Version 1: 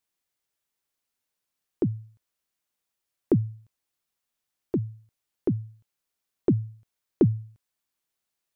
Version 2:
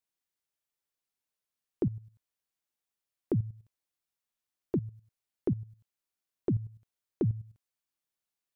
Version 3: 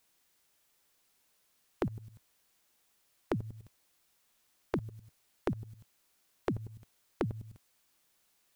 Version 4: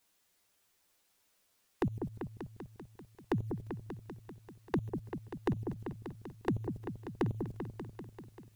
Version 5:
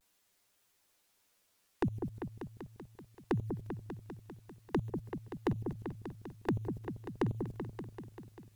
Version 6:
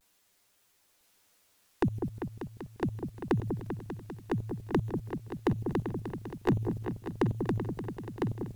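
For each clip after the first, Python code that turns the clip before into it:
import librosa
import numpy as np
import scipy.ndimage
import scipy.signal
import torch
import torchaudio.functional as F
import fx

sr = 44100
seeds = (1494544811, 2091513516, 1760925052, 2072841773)

y1 = fx.level_steps(x, sr, step_db=13)
y2 = fx.peak_eq(y1, sr, hz=110.0, db=-3.0, octaves=0.62)
y2 = fx.spectral_comp(y2, sr, ratio=2.0)
y2 = y2 * librosa.db_to_amplitude(3.0)
y3 = fx.env_flanger(y2, sr, rest_ms=10.8, full_db=-33.5)
y3 = fx.echo_opening(y3, sr, ms=195, hz=750, octaves=2, feedback_pct=70, wet_db=-6)
y3 = y3 * librosa.db_to_amplitude(2.0)
y4 = fx.vibrato(y3, sr, rate_hz=0.44, depth_cents=34.0)
y5 = y4 + 10.0 ** (-3.5 / 20.0) * np.pad(y4, (int(1005 * sr / 1000.0), 0))[:len(y4)]
y5 = y5 * librosa.db_to_amplitude(4.5)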